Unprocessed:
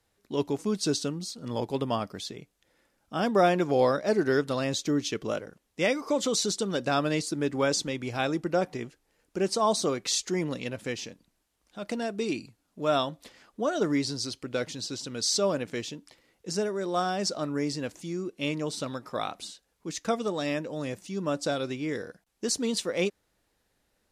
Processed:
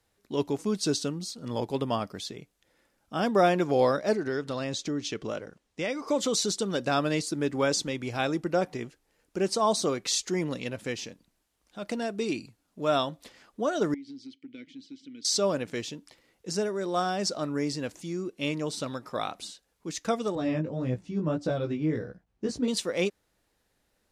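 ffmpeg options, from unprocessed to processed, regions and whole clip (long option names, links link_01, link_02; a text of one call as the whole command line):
ffmpeg -i in.wav -filter_complex "[0:a]asettb=1/sr,asplit=3[link_01][link_02][link_03];[link_01]atrim=end=4.154[link_04];[link_02]atrim=start=4.15:end=6.08,asetpts=PTS-STARTPTS,afade=type=in:duration=0.004:curve=qsin,afade=type=out:start_time=1.926:duration=0.004:curve=qsin,lowpass=8200,acompressor=threshold=-30dB:ratio=2:attack=3.2:release=140:knee=1:detection=peak[link_05];[link_03]atrim=start=6.076[link_06];[link_04][link_05]acrossfade=duration=0.004:curve1=hsin:curve2=qsin[link_07];[link_07][link_06]acrossfade=duration=0.004:curve1=qsin:curve2=hsin,asettb=1/sr,asplit=3[link_08][link_09][link_10];[link_08]atrim=end=13.944[link_11];[link_09]atrim=start=13.94:end=15.25,asetpts=PTS-STARTPTS,afade=type=in:duration=0.004:curve=qsin,afade=type=out:start_time=1.306:duration=0.004:curve=qsin,asplit=3[link_12][link_13][link_14];[link_12]bandpass=frequency=270:width_type=q:width=8,volume=0dB[link_15];[link_13]bandpass=frequency=2290:width_type=q:width=8,volume=-6dB[link_16];[link_14]bandpass=frequency=3010:width_type=q:width=8,volume=-9dB[link_17];[link_15][link_16][link_17]amix=inputs=3:normalize=0,acompressor=threshold=-38dB:ratio=12:attack=3.2:release=140:knee=1:detection=peak[link_18];[link_10]atrim=start=15.246[link_19];[link_11][link_18]acrossfade=duration=0.004:curve1=hsin:curve2=qsin[link_20];[link_20][link_19]acrossfade=duration=0.004:curve1=qsin:curve2=hsin,asettb=1/sr,asplit=3[link_21][link_22][link_23];[link_21]atrim=end=20.354[link_24];[link_22]atrim=start=20.35:end=22.68,asetpts=PTS-STARTPTS,afade=type=in:duration=0.004:curve=qsin,afade=type=out:start_time=2.326:duration=0.004:curve=qsin,highpass=59,aemphasis=mode=reproduction:type=riaa,flanger=delay=16:depth=3.4:speed=1.7[link_25];[link_23]atrim=start=22.676[link_26];[link_24][link_25]acrossfade=duration=0.004:curve1=hsin:curve2=qsin[link_27];[link_27][link_26]acrossfade=duration=0.004:curve1=qsin:curve2=hsin" out.wav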